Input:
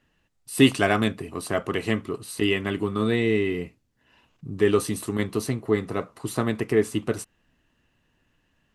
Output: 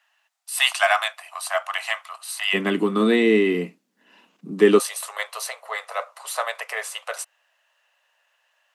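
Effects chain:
Butterworth high-pass 650 Hz 72 dB per octave, from 0:02.53 170 Hz, from 0:04.78 550 Hz
level +5.5 dB

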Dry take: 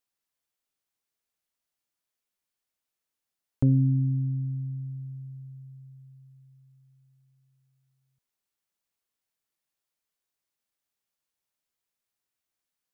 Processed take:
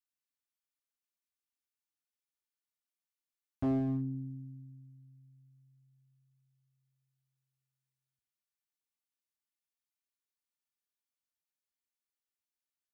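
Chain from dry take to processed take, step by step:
high-pass filter 46 Hz 24 dB per octave
parametric band 540 Hz −11.5 dB 1.1 octaves
comb filter 3.4 ms, depth 76%
hard clipping −25 dBFS, distortion −10 dB
delay with a low-pass on its return 85 ms, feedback 64%, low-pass 480 Hz, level −14 dB
on a send at −15 dB: convolution reverb RT60 0.40 s, pre-delay 4 ms
on the sum: expander for the loud parts 1.5 to 1, over −44 dBFS
level −2.5 dB

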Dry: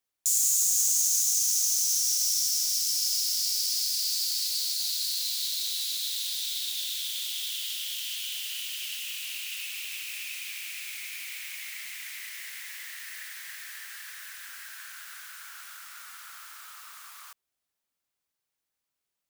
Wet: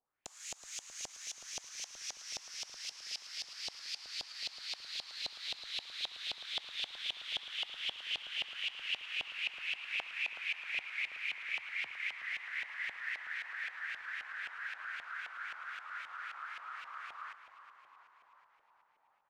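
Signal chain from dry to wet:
auto-filter low-pass saw up 3.8 Hz 740–2,800 Hz
0:11.09–0:12.18: frequency shifter +91 Hz
echo with shifted repeats 372 ms, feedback 62%, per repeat −60 Hz, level −12 dB

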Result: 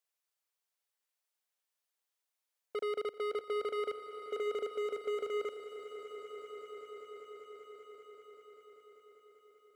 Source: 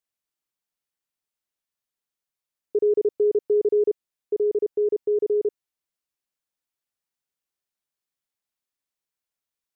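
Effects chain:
high-pass filter 440 Hz 24 dB per octave
hard clipping −33.5 dBFS, distortion −8 dB
echo that builds up and dies away 195 ms, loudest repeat 5, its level −15 dB

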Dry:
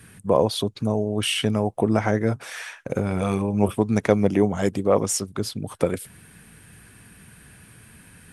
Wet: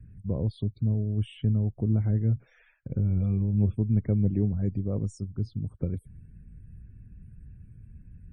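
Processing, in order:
spectral tilt −3 dB per octave
spectral peaks only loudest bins 64
guitar amp tone stack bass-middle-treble 10-0-1
level +4.5 dB

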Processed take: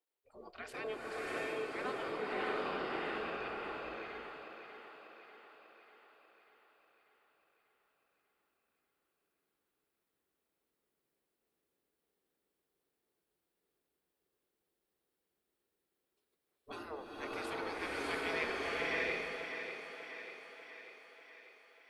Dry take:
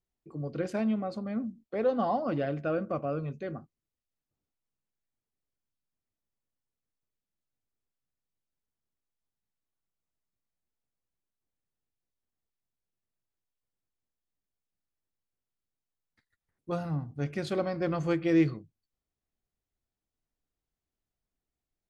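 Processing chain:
mains-hum notches 50/100/150/200 Hz
gate on every frequency bin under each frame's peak −20 dB weak
graphic EQ with 15 bands 100 Hz −9 dB, 400 Hz +11 dB, 6,300 Hz −8 dB
feedback echo with a high-pass in the loop 592 ms, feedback 59%, high-pass 220 Hz, level −8 dB
slow-attack reverb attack 710 ms, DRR −5 dB
level +1 dB

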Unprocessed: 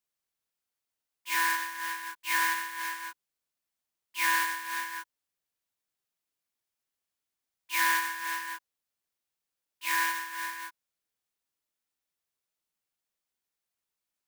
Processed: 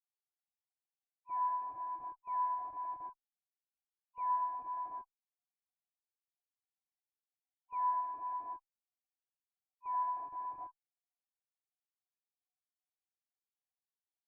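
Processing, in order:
three sine waves on the formant tracks
parametric band 680 Hz +2.5 dB 2.4 octaves
in parallel at −5 dB: comparator with hysteresis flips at −34 dBFS
on the sum: harmonic generator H 6 −28 dB, 8 −37 dB, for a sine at −15 dBFS
formant resonators in series a

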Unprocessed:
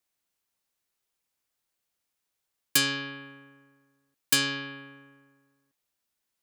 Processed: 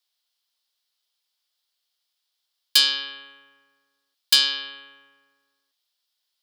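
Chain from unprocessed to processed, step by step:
high-pass filter 630 Hz 12 dB per octave
flat-topped bell 4,000 Hz +11.5 dB 1 octave

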